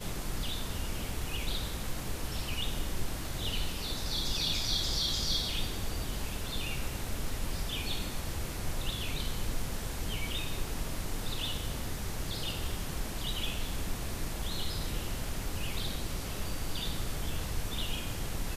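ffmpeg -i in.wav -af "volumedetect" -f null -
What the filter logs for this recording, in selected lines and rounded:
mean_volume: -32.9 dB
max_volume: -17.7 dB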